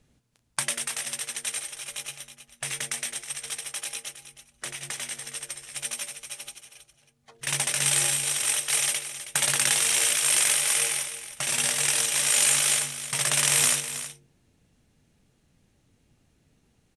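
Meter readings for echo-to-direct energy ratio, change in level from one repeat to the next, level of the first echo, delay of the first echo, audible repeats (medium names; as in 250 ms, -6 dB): -12.0 dB, no regular repeats, -12.0 dB, 320 ms, 1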